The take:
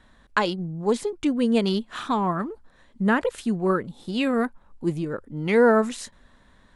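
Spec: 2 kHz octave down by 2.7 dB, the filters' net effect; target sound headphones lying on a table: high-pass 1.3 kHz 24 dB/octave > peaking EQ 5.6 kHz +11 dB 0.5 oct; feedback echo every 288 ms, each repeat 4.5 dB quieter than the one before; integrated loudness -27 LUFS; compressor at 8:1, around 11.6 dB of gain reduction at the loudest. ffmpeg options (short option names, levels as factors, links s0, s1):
-af "equalizer=f=2000:t=o:g=-3,acompressor=threshold=0.0562:ratio=8,highpass=f=1300:w=0.5412,highpass=f=1300:w=1.3066,equalizer=f=5600:t=o:w=0.5:g=11,aecho=1:1:288|576|864|1152|1440|1728|2016|2304|2592:0.596|0.357|0.214|0.129|0.0772|0.0463|0.0278|0.0167|0.01,volume=3.55"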